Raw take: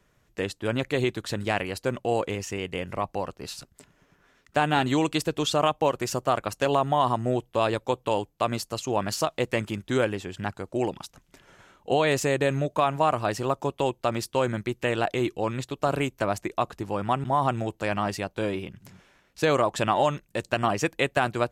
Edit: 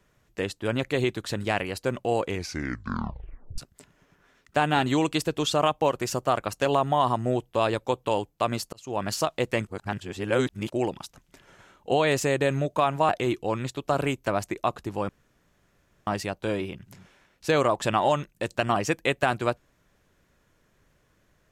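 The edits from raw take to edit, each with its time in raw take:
2.27 tape stop 1.31 s
8.73–9.08 fade in
9.67–10.7 reverse
13.09–15.03 cut
17.03–18.01 room tone

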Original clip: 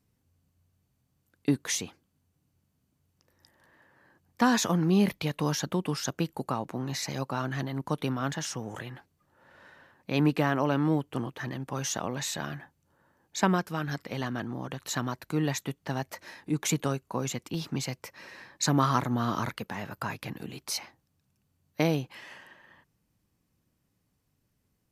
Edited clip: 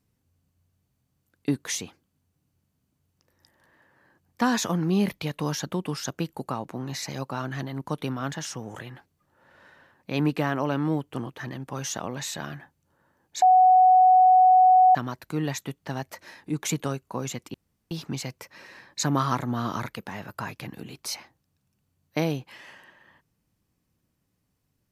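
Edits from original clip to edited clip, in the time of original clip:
13.42–14.95 bleep 742 Hz -12.5 dBFS
17.54 insert room tone 0.37 s

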